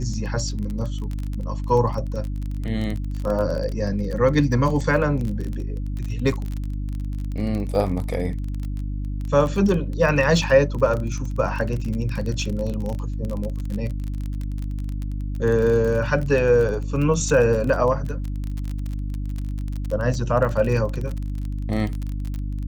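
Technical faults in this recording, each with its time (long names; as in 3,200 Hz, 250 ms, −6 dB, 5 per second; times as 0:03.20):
surface crackle 29 per second −26 dBFS
mains hum 50 Hz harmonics 6 −27 dBFS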